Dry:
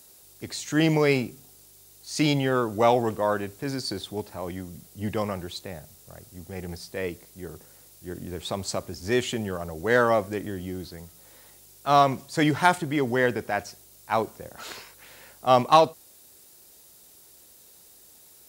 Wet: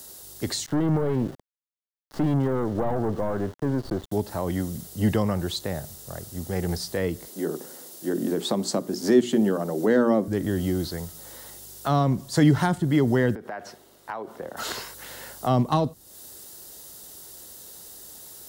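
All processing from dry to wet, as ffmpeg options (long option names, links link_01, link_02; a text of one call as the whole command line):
ffmpeg -i in.wav -filter_complex "[0:a]asettb=1/sr,asplit=3[link_01][link_02][link_03];[link_01]atrim=end=0.664[link_04];[link_02]atrim=start=0.66:end=4.12,asetpts=PTS-STARTPTS,afade=type=in:duration=0.004:curve=qsin,afade=type=out:start_time=3.456:duration=0.004:curve=qsin,aeval=exprs='(tanh(22.4*val(0)+0.45)-tanh(0.45))/22.4':channel_layout=same,lowpass=1200,aeval=exprs='val(0)*gte(abs(val(0)),0.00422)':channel_layout=same[link_05];[link_03]atrim=start=4.116[link_06];[link_04][link_05]acrossfade=duration=0.004:curve1=hsin:curve2=qsin[link_07];[link_07][link_06]acrossfade=duration=0.004:curve1=qsin:curve2=hsin,asettb=1/sr,asplit=3[link_08][link_09][link_10];[link_08]atrim=end=7.274[link_11];[link_09]atrim=start=7.27:end=10.28,asetpts=PTS-STARTPTS,afade=type=in:duration=0.004:curve=qsin,afade=type=out:start_time=3.006:duration=0.004:curve=qsin,highpass=frequency=230:width=0.5412,highpass=frequency=230:width=1.3066,lowshelf=frequency=410:gain=10.5,bandreject=frequency=60:width_type=h:width=6,bandreject=frequency=120:width_type=h:width=6,bandreject=frequency=180:width_type=h:width=6,bandreject=frequency=240:width_type=h:width=6,bandreject=frequency=300:width_type=h:width=6,bandreject=frequency=360:width_type=h:width=6,bandreject=frequency=420:width_type=h:width=6[link_12];[link_10]atrim=start=10.276[link_13];[link_11][link_12]acrossfade=duration=0.004:curve1=hsin:curve2=qsin[link_14];[link_14][link_13]acrossfade=duration=0.004:curve1=qsin:curve2=hsin,asettb=1/sr,asplit=3[link_15][link_16][link_17];[link_15]atrim=end=13.354[link_18];[link_16]atrim=start=13.35:end=14.57,asetpts=PTS-STARTPTS,afade=type=in:duration=0.004:curve=qsin,afade=type=out:start_time=1.216:duration=0.004:curve=qsin,acrossover=split=190 3100:gain=0.178 1 0.158[link_19][link_20][link_21];[link_19][link_20][link_21]amix=inputs=3:normalize=0,acompressor=threshold=-37dB:ratio=10:attack=3.2:release=140:knee=1:detection=peak[link_22];[link_17]atrim=start=14.566[link_23];[link_18][link_22]acrossfade=duration=0.004:curve1=hsin:curve2=qsin[link_24];[link_24][link_23]acrossfade=duration=0.004:curve1=qsin:curve2=hsin,equalizer=frequency=2400:width=5.8:gain=-10.5,acrossover=split=280[link_25][link_26];[link_26]acompressor=threshold=-36dB:ratio=4[link_27];[link_25][link_27]amix=inputs=2:normalize=0,volume=9dB" out.wav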